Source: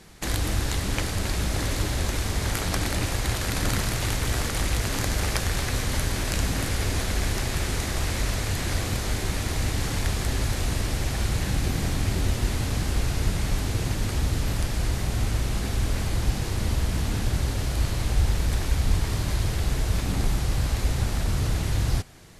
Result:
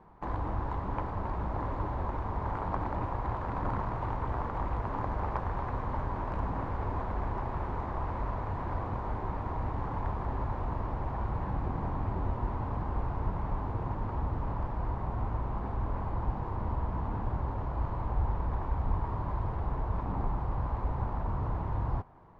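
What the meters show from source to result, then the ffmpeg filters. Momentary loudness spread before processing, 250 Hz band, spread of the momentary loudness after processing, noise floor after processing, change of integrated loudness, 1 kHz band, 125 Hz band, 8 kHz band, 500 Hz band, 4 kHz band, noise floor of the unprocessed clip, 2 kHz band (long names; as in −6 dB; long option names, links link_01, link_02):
2 LU, −7.5 dB, 2 LU, −37 dBFS, −8.0 dB, +1.5 dB, −8.0 dB, below −40 dB, −5.0 dB, below −30 dB, −30 dBFS, −15.0 dB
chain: -af "lowpass=frequency=980:width_type=q:width=4.9,volume=-8dB"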